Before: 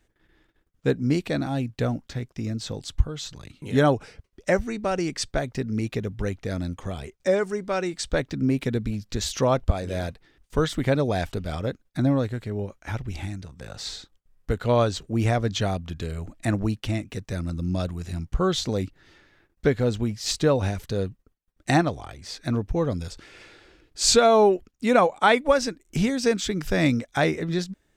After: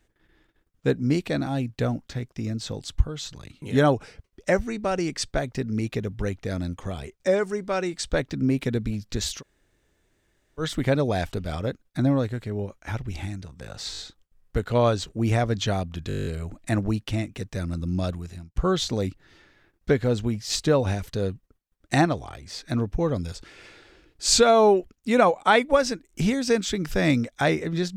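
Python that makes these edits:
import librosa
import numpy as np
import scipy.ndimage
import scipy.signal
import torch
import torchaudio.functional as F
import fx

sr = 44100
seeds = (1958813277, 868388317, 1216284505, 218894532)

y = fx.edit(x, sr, fx.room_tone_fill(start_s=9.38, length_s=1.24, crossfade_s=0.1),
    fx.stutter(start_s=13.92, slice_s=0.02, count=4),
    fx.stutter(start_s=16.02, slice_s=0.02, count=10),
    fx.fade_out_span(start_s=17.88, length_s=0.43), tone=tone)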